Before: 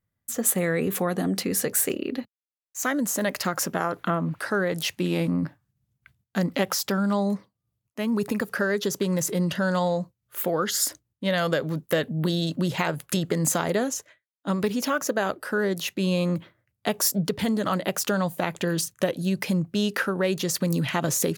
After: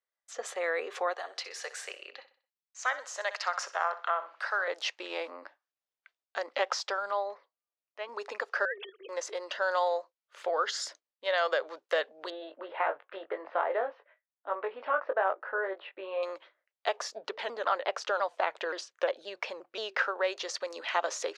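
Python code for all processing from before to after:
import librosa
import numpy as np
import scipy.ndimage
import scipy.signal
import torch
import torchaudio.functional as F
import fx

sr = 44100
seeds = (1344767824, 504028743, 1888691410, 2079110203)

y = fx.chain(x, sr, fx.highpass(hz=720.0, slope=12),
    fx.echo_feedback(ms=63, feedback_pct=39, wet_db=-14.0), at=(1.13, 4.68))
y = fx.chain(y, sr, fx.highpass(hz=300.0, slope=6),
    fx.air_absorb(metres=160.0), at=(7.11, 8.09))
y = fx.chain(y, sr, fx.sine_speech(),
    fx.highpass(hz=460.0, slope=12),
    fx.over_compress(threshold_db=-30.0, ratio=-0.5), at=(8.65, 9.09))
y = fx.chain(y, sr, fx.gaussian_blur(sigma=3.9),
    fx.doubler(ms=21.0, db=-6.0), at=(12.3, 16.23))
y = fx.chain(y, sr, fx.bass_treble(bass_db=8, treble_db=-6),
    fx.vibrato_shape(shape='saw_down', rate_hz=5.7, depth_cents=160.0), at=(16.97, 19.99))
y = scipy.signal.sosfilt(scipy.signal.butter(4, 5700.0, 'lowpass', fs=sr, output='sos'), y)
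y = fx.dynamic_eq(y, sr, hz=980.0, q=0.71, threshold_db=-36.0, ratio=4.0, max_db=5)
y = scipy.signal.sosfilt(scipy.signal.cheby2(4, 50, 190.0, 'highpass', fs=sr, output='sos'), y)
y = y * 10.0 ** (-5.0 / 20.0)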